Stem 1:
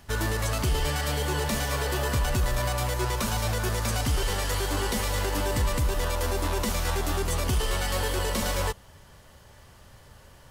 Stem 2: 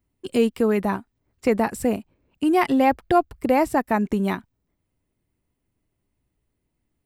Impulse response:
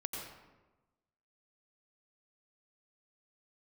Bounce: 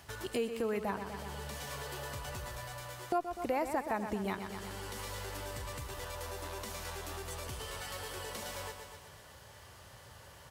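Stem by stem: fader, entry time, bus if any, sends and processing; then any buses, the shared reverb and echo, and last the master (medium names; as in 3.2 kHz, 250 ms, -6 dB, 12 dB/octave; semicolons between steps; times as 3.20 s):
0.0 dB, 0.00 s, no send, echo send -9 dB, high-pass 87 Hz 12 dB/octave; compression 1.5:1, threshold -49 dBFS, peak gain reduction 9.5 dB; auto duck -12 dB, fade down 0.70 s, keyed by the second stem
+2.0 dB, 0.00 s, muted 1.16–3.12 s, no send, echo send -10.5 dB, none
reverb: none
echo: feedback delay 123 ms, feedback 56%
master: peaking EQ 230 Hz -7.5 dB 1.2 oct; compression 2:1, threshold -42 dBFS, peak gain reduction 16.5 dB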